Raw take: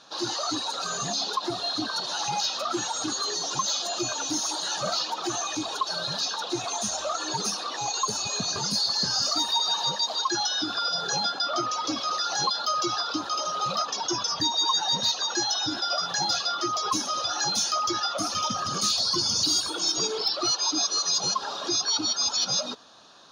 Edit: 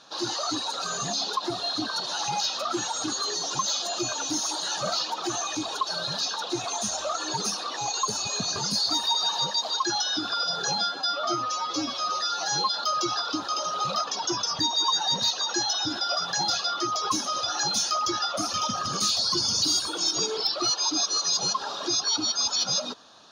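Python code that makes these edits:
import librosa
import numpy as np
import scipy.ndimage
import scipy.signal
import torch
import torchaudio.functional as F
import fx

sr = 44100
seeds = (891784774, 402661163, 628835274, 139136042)

y = fx.edit(x, sr, fx.cut(start_s=8.9, length_s=0.45),
    fx.stretch_span(start_s=11.23, length_s=1.28, factor=1.5), tone=tone)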